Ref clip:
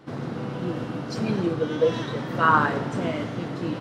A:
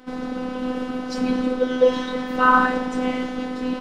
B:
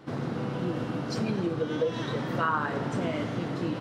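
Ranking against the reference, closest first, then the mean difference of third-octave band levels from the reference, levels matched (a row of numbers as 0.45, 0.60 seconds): B, A; 2.5, 5.0 decibels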